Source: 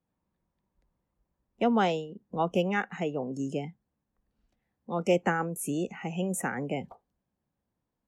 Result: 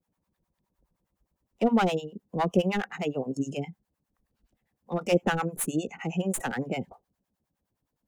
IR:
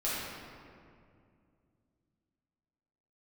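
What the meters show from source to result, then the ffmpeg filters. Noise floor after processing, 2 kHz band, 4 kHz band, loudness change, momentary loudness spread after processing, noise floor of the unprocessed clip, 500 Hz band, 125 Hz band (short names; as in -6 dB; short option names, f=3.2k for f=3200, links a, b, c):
-84 dBFS, 0.0 dB, +2.5 dB, +1.5 dB, 10 LU, -84 dBFS, +1.0 dB, +2.5 dB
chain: -filter_complex "[0:a]highshelf=f=5.7k:g=4.5,acrossover=split=740[a][b];[b]aeval=exprs='clip(val(0),-1,0.0158)':c=same[c];[a][c]amix=inputs=2:normalize=0,acrossover=split=640[d][e];[d]aeval=exprs='val(0)*(1-1/2+1/2*cos(2*PI*9.7*n/s))':c=same[f];[e]aeval=exprs='val(0)*(1-1/2-1/2*cos(2*PI*9.7*n/s))':c=same[g];[f][g]amix=inputs=2:normalize=0,volume=6.5dB"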